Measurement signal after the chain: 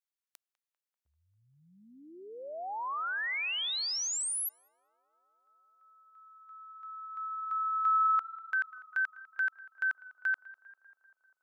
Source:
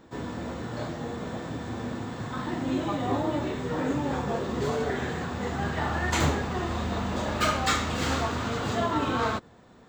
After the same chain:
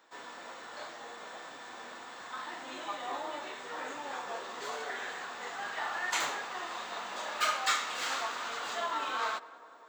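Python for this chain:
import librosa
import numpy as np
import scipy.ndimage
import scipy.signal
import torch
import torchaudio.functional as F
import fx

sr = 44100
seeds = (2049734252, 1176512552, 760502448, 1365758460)

p1 = scipy.signal.sosfilt(scipy.signal.butter(2, 890.0, 'highpass', fs=sr, output='sos'), x)
p2 = p1 + fx.echo_tape(p1, sr, ms=198, feedback_pct=87, wet_db=-17.0, lp_hz=1500.0, drive_db=8.0, wow_cents=31, dry=0)
y = p2 * librosa.db_to_amplitude(-2.5)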